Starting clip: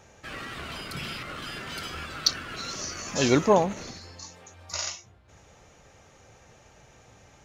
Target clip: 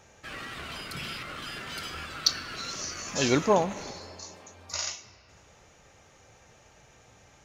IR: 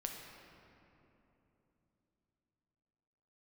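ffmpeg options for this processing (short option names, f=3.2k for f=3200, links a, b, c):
-filter_complex "[0:a]asplit=2[a][b];[b]highpass=f=1.2k:p=1[c];[1:a]atrim=start_sample=2205[d];[c][d]afir=irnorm=-1:irlink=0,volume=-4.5dB[e];[a][e]amix=inputs=2:normalize=0,volume=-3.5dB"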